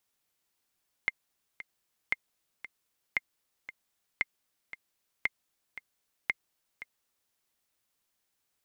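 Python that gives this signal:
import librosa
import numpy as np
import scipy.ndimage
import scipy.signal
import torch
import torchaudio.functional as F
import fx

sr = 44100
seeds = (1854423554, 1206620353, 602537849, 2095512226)

y = fx.click_track(sr, bpm=115, beats=2, bars=6, hz=2110.0, accent_db=14.5, level_db=-13.5)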